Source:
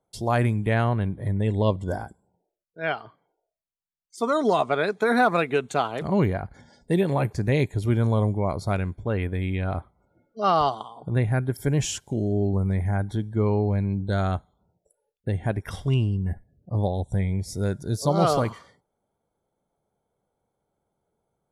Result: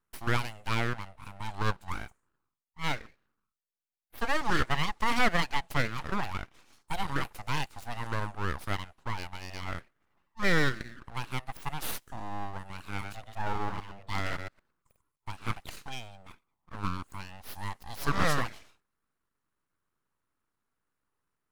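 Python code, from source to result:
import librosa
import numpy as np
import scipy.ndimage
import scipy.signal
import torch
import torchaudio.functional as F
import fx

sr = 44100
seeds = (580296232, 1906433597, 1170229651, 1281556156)

y = fx.reverse_delay(x, sr, ms=113, wet_db=-5.5, at=(12.9, 15.56))
y = scipy.signal.sosfilt(scipy.signal.butter(4, 400.0, 'highpass', fs=sr, output='sos'), y)
y = np.abs(y)
y = y * librosa.db_to_amplitude(-1.5)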